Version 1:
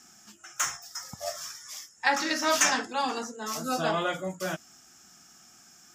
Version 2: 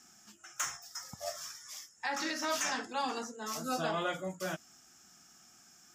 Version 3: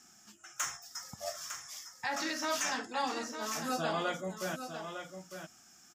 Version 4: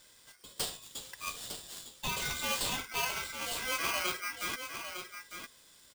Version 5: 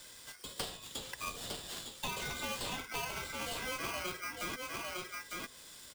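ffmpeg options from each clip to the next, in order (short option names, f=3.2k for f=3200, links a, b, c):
-af "alimiter=limit=-17.5dB:level=0:latency=1:release=156,volume=-5dB"
-af "aecho=1:1:904:0.376"
-af "aeval=exprs='val(0)*sgn(sin(2*PI*1800*n/s))':c=same"
-filter_complex "[0:a]acrossover=split=210|850|4000[a][b][c][d];[a]acompressor=threshold=-56dB:ratio=4[e];[b]acompressor=threshold=-52dB:ratio=4[f];[c]acompressor=threshold=-50dB:ratio=4[g];[d]acompressor=threshold=-54dB:ratio=4[h];[e][f][g][h]amix=inputs=4:normalize=0,volume=7dB"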